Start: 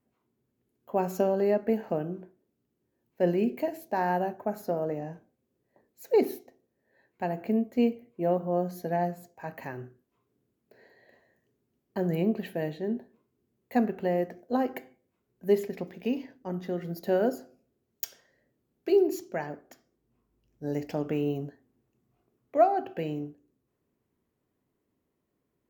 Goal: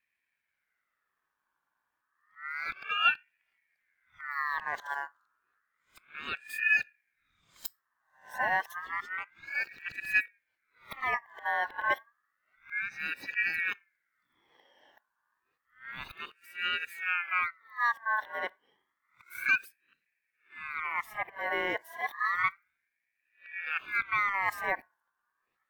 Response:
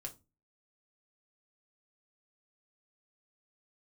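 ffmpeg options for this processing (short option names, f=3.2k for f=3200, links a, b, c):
-filter_complex "[0:a]areverse,asplit=2[a][b];[1:a]atrim=start_sample=2205[c];[b][c]afir=irnorm=-1:irlink=0,volume=-11.5dB[d];[a][d]amix=inputs=2:normalize=0,aeval=exprs='val(0)*sin(2*PI*1700*n/s+1700*0.25/0.3*sin(2*PI*0.3*n/s))':c=same,volume=-2.5dB"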